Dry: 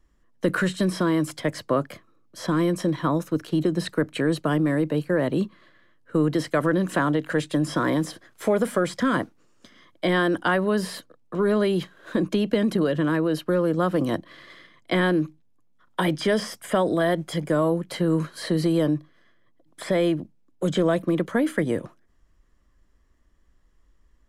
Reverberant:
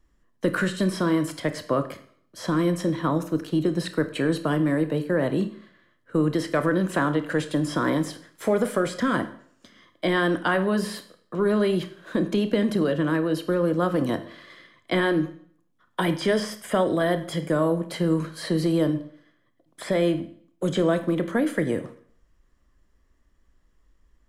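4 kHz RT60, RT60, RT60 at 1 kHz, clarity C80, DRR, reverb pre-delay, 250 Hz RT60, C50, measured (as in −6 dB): 0.55 s, 0.55 s, 0.55 s, 16.5 dB, 9.5 dB, 24 ms, 0.55 s, 13.0 dB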